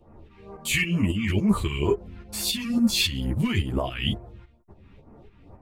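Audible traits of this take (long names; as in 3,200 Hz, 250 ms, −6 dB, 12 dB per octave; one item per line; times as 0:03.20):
phaser sweep stages 2, 2.2 Hz, lowest notch 550–3,300 Hz
tremolo saw up 3.6 Hz, depth 65%
a shimmering, thickened sound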